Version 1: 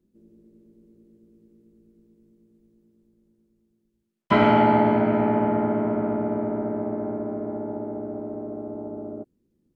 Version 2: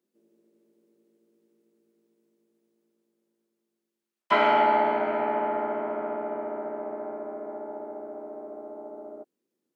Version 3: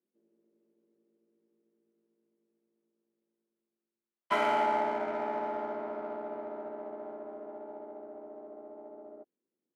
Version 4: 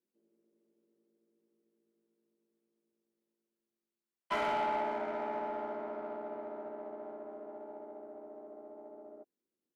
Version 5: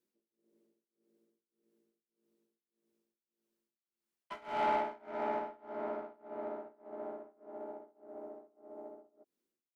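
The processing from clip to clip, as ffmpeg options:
ffmpeg -i in.wav -af "highpass=570" out.wav
ffmpeg -i in.wav -af "adynamicsmooth=sensitivity=6.5:basefreq=2800,volume=-7dB" out.wav
ffmpeg -i in.wav -af "asoftclip=type=tanh:threshold=-23.5dB,volume=-2.5dB" out.wav
ffmpeg -i in.wav -af "tremolo=f=1.7:d=0.96,volume=3dB" out.wav

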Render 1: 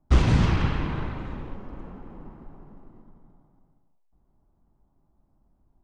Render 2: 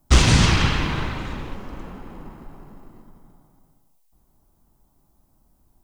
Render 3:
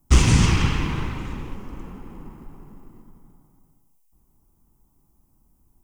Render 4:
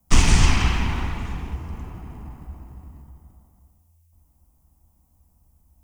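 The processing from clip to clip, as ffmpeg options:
ffmpeg -i in.wav -af "crystalizer=i=6.5:c=0,volume=3.5dB" out.wav
ffmpeg -i in.wav -af "equalizer=frequency=630:width_type=o:width=0.67:gain=-9,equalizer=frequency=1600:width_type=o:width=0.67:gain=-6,equalizer=frequency=4000:width_type=o:width=0.67:gain=-9" out.wav
ffmpeg -i in.wav -af "afreqshift=-83,volume=1.5dB" out.wav

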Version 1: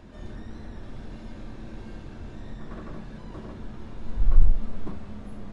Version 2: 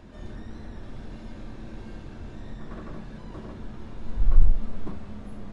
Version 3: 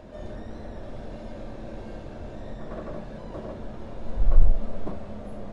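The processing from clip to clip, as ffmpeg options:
ffmpeg -i in.wav -af anull out.wav
ffmpeg -i in.wav -af "equalizer=frequency=590:width=1.8:gain=12" out.wav

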